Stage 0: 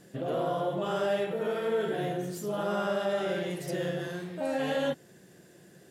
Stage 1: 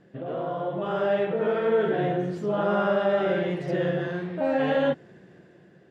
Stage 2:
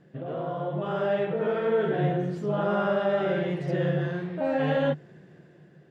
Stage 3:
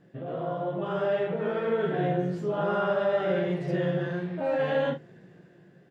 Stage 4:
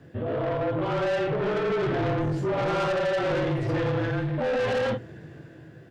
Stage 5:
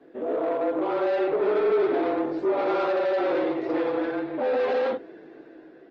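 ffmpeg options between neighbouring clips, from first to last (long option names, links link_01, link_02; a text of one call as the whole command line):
ffmpeg -i in.wav -af "lowpass=2400,dynaudnorm=framelen=280:gausssize=7:maxgain=7.5dB,volume=-1dB" out.wav
ffmpeg -i in.wav -af "equalizer=frequency=150:width=6.6:gain=10,volume=-2dB" out.wav
ffmpeg -i in.wav -af "aecho=1:1:17|43:0.473|0.316,volume=-2dB" out.wav
ffmpeg -i in.wav -af "asoftclip=type=tanh:threshold=-31.5dB,afreqshift=-30,volume=8.5dB" out.wav
ffmpeg -i in.wav -af "highpass=frequency=280:width=0.5412,highpass=frequency=280:width=1.3066,equalizer=frequency=290:width_type=q:width=4:gain=5,equalizer=frequency=410:width_type=q:width=4:gain=5,equalizer=frequency=740:width_type=q:width=4:gain=3,equalizer=frequency=1700:width_type=q:width=4:gain=-4,equalizer=frequency=3000:width_type=q:width=4:gain=-7,lowpass=frequency=4200:width=0.5412,lowpass=frequency=4200:width=1.3066" -ar 48000 -c:a libopus -b:a 20k out.opus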